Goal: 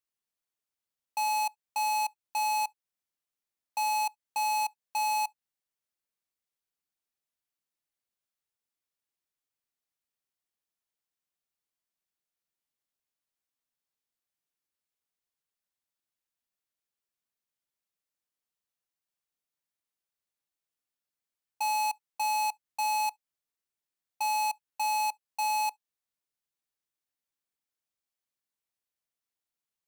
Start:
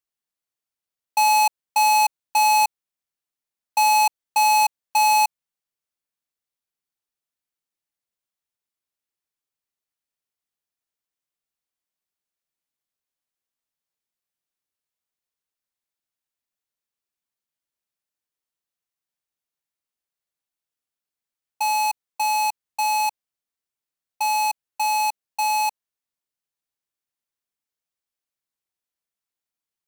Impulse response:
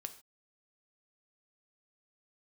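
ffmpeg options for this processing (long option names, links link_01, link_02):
-filter_complex "[0:a]alimiter=level_in=1.5dB:limit=-24dB:level=0:latency=1:release=203,volume=-1.5dB,asplit=2[link_01][link_02];[1:a]atrim=start_sample=2205,asetrate=88200,aresample=44100[link_03];[link_02][link_03]afir=irnorm=-1:irlink=0,volume=-7dB[link_04];[link_01][link_04]amix=inputs=2:normalize=0,volume=-4dB"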